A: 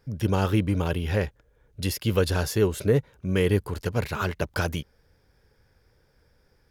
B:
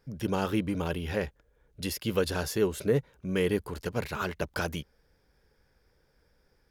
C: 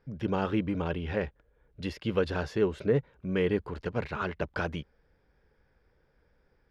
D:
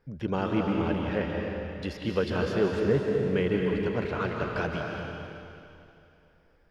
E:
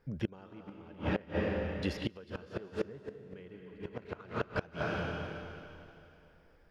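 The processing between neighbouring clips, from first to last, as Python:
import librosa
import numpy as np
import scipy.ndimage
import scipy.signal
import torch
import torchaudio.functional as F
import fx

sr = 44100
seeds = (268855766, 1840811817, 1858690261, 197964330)

y1 = fx.peak_eq(x, sr, hz=100.0, db=-13.0, octaves=0.36)
y1 = y1 * librosa.db_to_amplitude(-3.5)
y2 = scipy.signal.sosfilt(scipy.signal.butter(2, 2900.0, 'lowpass', fs=sr, output='sos'), y1)
y3 = fx.rev_freeverb(y2, sr, rt60_s=2.7, hf_ratio=1.0, predelay_ms=115, drr_db=0.0)
y4 = fx.gate_flip(y3, sr, shuts_db=-19.0, range_db=-24)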